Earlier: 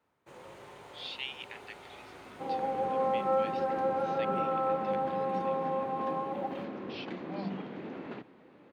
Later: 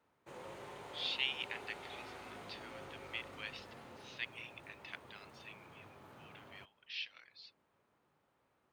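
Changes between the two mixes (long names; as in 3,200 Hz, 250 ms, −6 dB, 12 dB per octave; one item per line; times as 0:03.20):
speech +3.0 dB
second sound: muted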